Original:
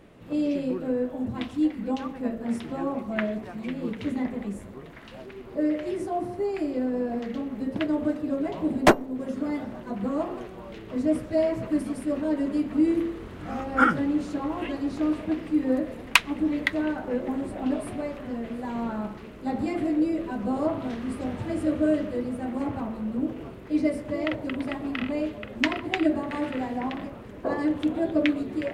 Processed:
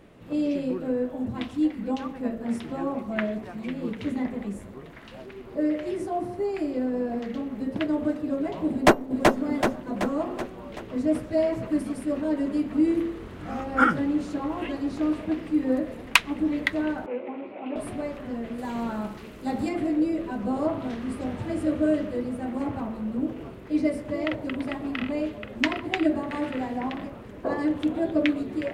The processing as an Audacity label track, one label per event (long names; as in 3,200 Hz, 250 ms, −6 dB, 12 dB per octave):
8.720000	9.370000	delay throw 380 ms, feedback 55%, level −2.5 dB
17.060000	17.760000	loudspeaker in its box 400–2,800 Hz, peaks and dips at 670 Hz −3 dB, 1,200 Hz −3 dB, 1,700 Hz −10 dB, 2,400 Hz +8 dB
18.580000	19.690000	high-shelf EQ 3,500 Hz +8.5 dB